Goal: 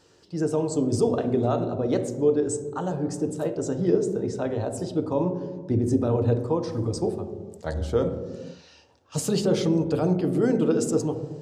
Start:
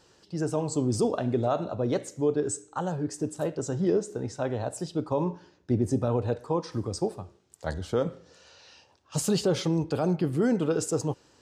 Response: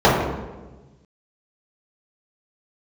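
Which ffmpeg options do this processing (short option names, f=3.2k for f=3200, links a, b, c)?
-filter_complex "[0:a]asplit=2[a][b];[1:a]atrim=start_sample=2205,afade=t=out:st=0.35:d=0.01,atrim=end_sample=15876,asetrate=25137,aresample=44100[c];[b][c]afir=irnorm=-1:irlink=0,volume=-36dB[d];[a][d]amix=inputs=2:normalize=0"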